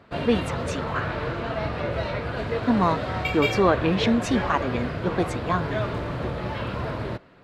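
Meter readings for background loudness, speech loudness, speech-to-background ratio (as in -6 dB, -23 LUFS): -29.0 LUFS, -25.5 LUFS, 3.5 dB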